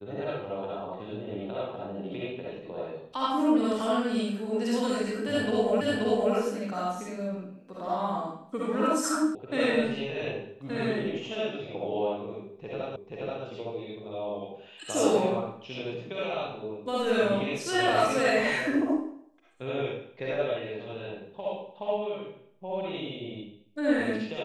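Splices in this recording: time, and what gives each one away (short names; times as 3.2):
5.81 repeat of the last 0.53 s
9.35 sound cut off
12.96 repeat of the last 0.48 s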